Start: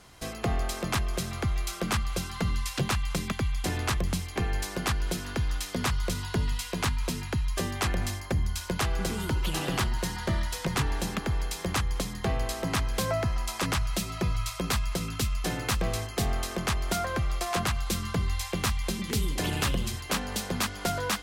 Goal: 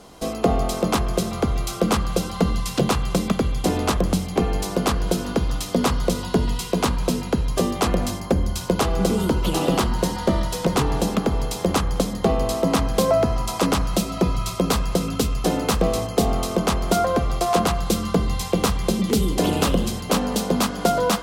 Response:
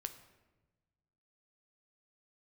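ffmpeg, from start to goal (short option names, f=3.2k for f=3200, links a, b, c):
-filter_complex "[0:a]asplit=2[a][b];[b]highpass=f=100:w=0.5412,highpass=f=100:w=1.3066,equalizer=f=180:t=q:w=4:g=7,equalizer=f=260:t=q:w=4:g=5,equalizer=f=480:t=q:w=4:g=8,equalizer=f=700:t=q:w=4:g=4,equalizer=f=2k:t=q:w=4:g=-5,lowpass=f=2.1k:w=0.5412,lowpass=f=2.1k:w=1.3066[c];[1:a]atrim=start_sample=2205[d];[c][d]afir=irnorm=-1:irlink=0,volume=2dB[e];[a][e]amix=inputs=2:normalize=0,volume=5dB"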